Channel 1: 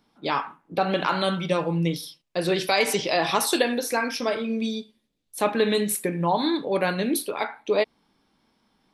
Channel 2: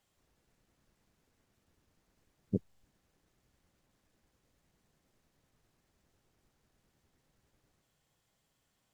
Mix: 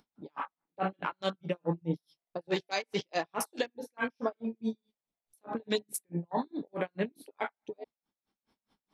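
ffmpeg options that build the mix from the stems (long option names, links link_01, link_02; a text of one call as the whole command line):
ffmpeg -i stem1.wav -i stem2.wav -filter_complex "[0:a]acompressor=mode=upward:threshold=-41dB:ratio=2.5,aeval=exprs='val(0)*pow(10,-37*(0.5-0.5*cos(2*PI*4.7*n/s))/20)':channel_layout=same,volume=-0.5dB[link_01];[1:a]aeval=exprs='val(0)*sgn(sin(2*PI*690*n/s))':channel_layout=same,volume=-9dB[link_02];[link_01][link_02]amix=inputs=2:normalize=0,afwtdn=0.01,alimiter=limit=-18dB:level=0:latency=1:release=410" out.wav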